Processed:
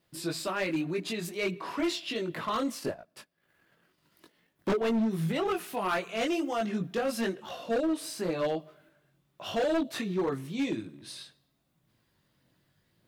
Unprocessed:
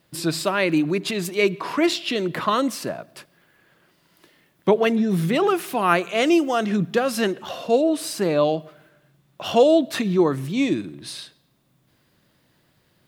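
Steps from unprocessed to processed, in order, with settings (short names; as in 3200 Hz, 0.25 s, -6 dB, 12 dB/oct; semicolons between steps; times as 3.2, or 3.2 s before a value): 2.75–4.72 transient shaper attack +8 dB, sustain -12 dB; chorus voices 4, 0.83 Hz, delay 20 ms, depth 2.4 ms; overloaded stage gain 18 dB; gain -6 dB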